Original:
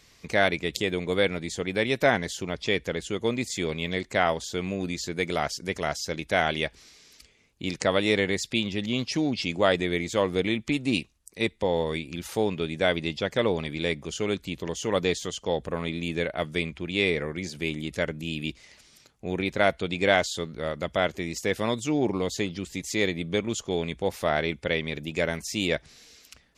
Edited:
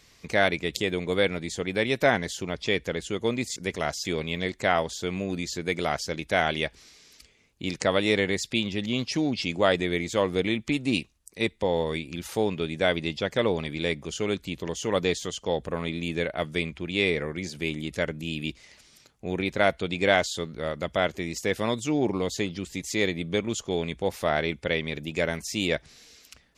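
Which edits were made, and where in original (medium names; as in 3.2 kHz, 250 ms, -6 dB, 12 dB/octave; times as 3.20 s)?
5.58–6.07 s: move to 3.56 s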